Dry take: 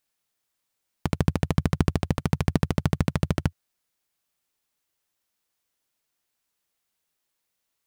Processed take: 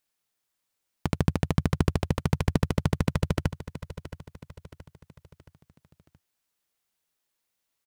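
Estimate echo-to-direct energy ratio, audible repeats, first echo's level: -12.5 dB, 4, -13.5 dB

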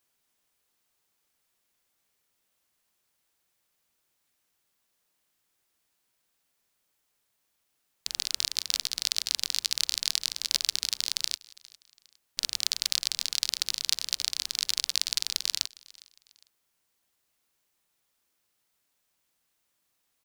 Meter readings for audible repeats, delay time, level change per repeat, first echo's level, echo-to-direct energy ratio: 2, 0.407 s, -8.5 dB, -23.0 dB, -22.5 dB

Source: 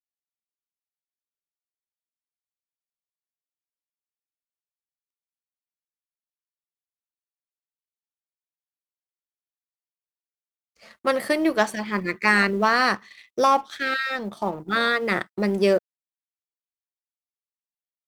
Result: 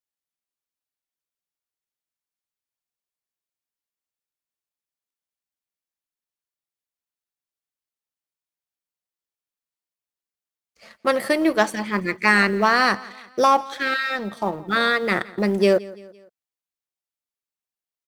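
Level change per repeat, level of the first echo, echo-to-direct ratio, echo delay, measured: -6.5 dB, -21.0 dB, -20.0 dB, 0.17 s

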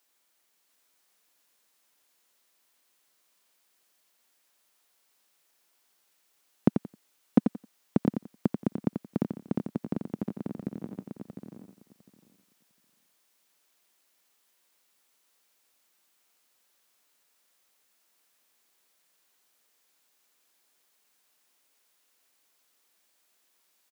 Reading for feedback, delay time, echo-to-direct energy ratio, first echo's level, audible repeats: no steady repeat, 88 ms, -1.0 dB, -7.0 dB, 7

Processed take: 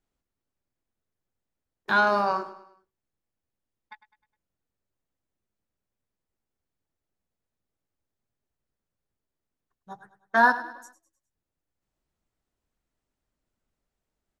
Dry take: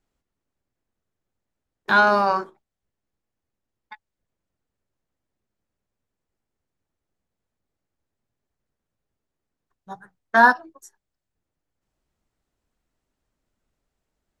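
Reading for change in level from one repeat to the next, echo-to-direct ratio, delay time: -7.0 dB, -14.0 dB, 0.103 s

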